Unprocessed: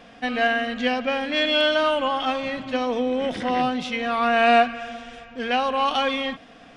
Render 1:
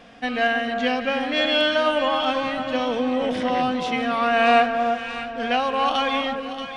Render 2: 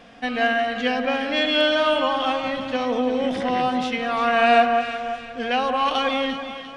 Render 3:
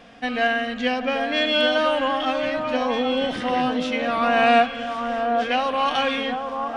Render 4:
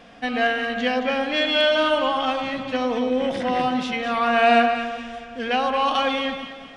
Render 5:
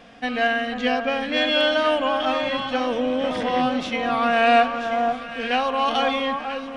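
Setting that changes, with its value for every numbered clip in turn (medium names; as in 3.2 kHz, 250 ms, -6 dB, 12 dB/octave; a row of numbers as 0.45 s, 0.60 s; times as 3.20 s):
echo whose repeats swap between lows and highs, time: 316 ms, 174 ms, 786 ms, 110 ms, 493 ms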